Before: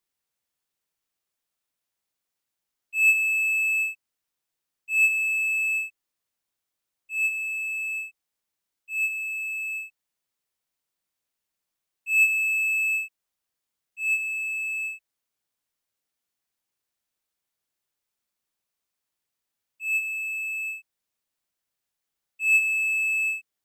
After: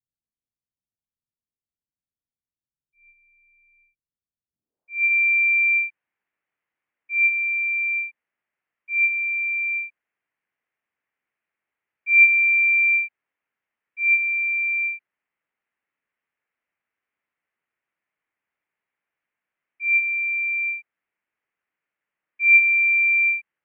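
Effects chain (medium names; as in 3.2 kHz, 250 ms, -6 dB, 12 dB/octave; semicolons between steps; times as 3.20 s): low-pass sweep 290 Hz -> 2.3 kHz, 4.46–5.12 s; mistuned SSB -250 Hz 380–3300 Hz; trim +1.5 dB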